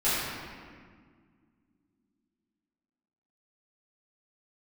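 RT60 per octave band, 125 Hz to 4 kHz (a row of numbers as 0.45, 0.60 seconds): 2.7, 3.5, 2.0, 1.7, 1.6, 1.2 seconds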